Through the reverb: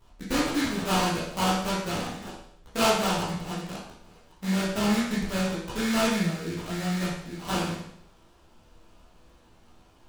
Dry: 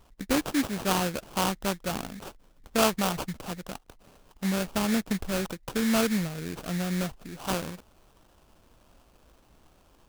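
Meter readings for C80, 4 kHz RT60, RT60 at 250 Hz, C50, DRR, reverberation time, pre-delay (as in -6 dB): 5.0 dB, 0.65 s, 0.70 s, 1.5 dB, -9.0 dB, 0.65 s, 12 ms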